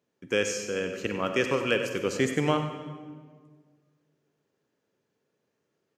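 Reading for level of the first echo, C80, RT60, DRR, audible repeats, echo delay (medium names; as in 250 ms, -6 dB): -10.5 dB, 7.0 dB, 1.7 s, 5.5 dB, 1, 96 ms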